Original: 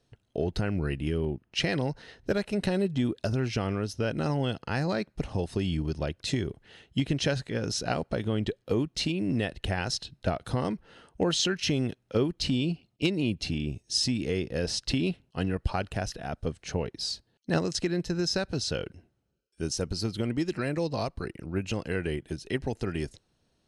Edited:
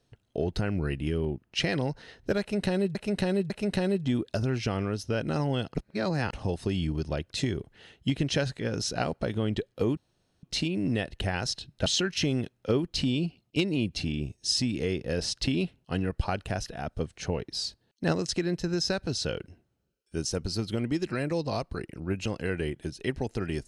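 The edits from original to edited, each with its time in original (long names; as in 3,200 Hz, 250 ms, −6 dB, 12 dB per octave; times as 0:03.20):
0:02.40–0:02.95: repeat, 3 plays
0:04.65–0:05.23: reverse
0:08.87: splice in room tone 0.46 s
0:10.30–0:11.32: remove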